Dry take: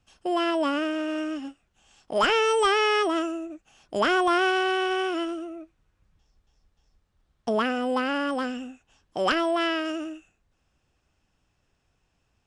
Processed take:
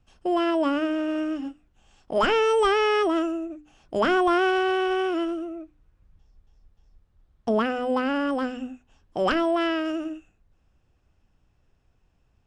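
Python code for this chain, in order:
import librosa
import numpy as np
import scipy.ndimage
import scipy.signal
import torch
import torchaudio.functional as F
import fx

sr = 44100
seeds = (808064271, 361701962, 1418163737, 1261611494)

y = fx.tilt_eq(x, sr, slope=-2.0)
y = fx.hum_notches(y, sr, base_hz=50, count=6)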